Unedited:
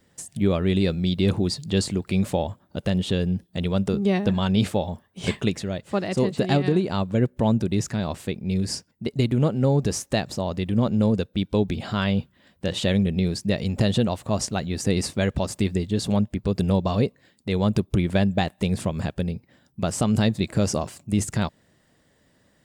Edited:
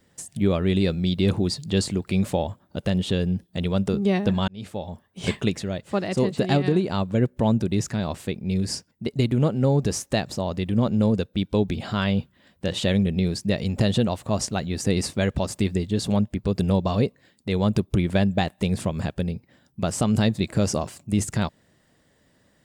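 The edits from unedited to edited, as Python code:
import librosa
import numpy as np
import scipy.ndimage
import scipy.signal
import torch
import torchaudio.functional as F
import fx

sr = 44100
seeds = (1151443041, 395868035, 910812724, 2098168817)

y = fx.edit(x, sr, fx.fade_in_span(start_s=4.48, length_s=0.72), tone=tone)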